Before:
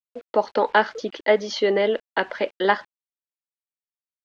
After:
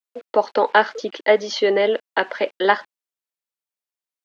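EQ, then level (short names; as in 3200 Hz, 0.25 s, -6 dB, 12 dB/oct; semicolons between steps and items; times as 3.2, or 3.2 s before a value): HPF 250 Hz 12 dB/oct; +3.0 dB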